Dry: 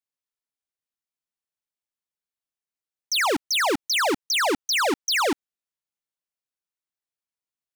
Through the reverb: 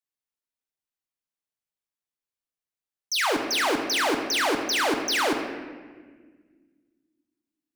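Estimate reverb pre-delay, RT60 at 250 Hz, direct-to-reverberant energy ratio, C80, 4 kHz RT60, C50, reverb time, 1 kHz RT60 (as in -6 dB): 6 ms, 2.5 s, 3.0 dB, 7.0 dB, 1.0 s, 5.5 dB, 1.6 s, 1.4 s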